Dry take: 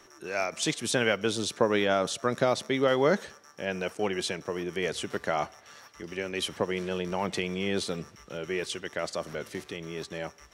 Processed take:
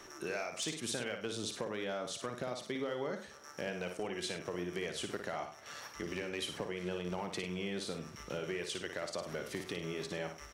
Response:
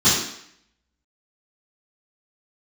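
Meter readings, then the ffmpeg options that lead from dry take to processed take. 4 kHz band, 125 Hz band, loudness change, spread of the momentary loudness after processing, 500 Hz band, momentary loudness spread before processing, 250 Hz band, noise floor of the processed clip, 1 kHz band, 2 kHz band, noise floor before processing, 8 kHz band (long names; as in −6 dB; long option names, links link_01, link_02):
−7.5 dB, −8.0 dB, −9.5 dB, 5 LU, −10.5 dB, 13 LU, −9.0 dB, −53 dBFS, −11.0 dB, −9.5 dB, −55 dBFS, −7.0 dB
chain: -af "acompressor=threshold=-38dB:ratio=10,asoftclip=type=hard:threshold=-31.5dB,aecho=1:1:56|100:0.447|0.2,volume=2.5dB"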